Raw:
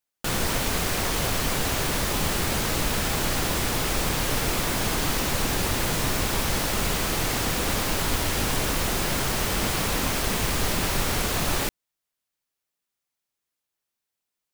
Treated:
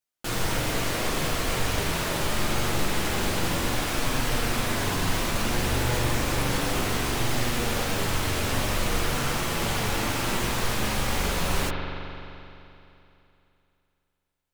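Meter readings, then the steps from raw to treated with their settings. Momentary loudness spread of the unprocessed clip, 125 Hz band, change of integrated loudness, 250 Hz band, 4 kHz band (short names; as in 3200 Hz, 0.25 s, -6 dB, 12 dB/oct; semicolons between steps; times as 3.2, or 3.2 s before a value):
0 LU, +0.5 dB, -2.0 dB, -0.5 dB, -2.0 dB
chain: chorus voices 4, 0.21 Hz, delay 13 ms, depth 4.9 ms; spring tank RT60 2.9 s, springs 42 ms, chirp 35 ms, DRR 1 dB; Doppler distortion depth 0.14 ms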